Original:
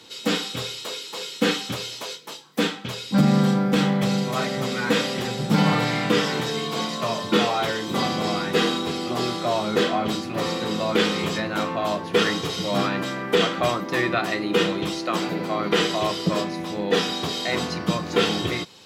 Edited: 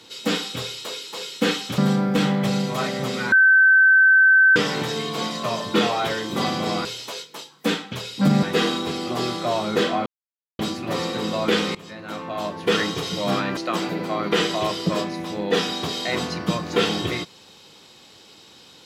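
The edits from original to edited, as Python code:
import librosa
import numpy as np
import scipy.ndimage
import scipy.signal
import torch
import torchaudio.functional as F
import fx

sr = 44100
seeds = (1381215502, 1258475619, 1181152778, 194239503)

y = fx.edit(x, sr, fx.move(start_s=1.78, length_s=1.58, to_s=8.43),
    fx.bleep(start_s=4.9, length_s=1.24, hz=1540.0, db=-10.5),
    fx.insert_silence(at_s=10.06, length_s=0.53),
    fx.fade_in_from(start_s=11.22, length_s=1.03, floor_db=-20.5),
    fx.cut(start_s=13.04, length_s=1.93), tone=tone)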